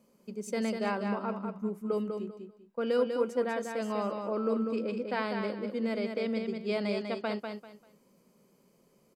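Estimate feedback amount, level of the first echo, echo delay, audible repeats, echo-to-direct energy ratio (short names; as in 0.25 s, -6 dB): 25%, -5.5 dB, 0.196 s, 3, -5.0 dB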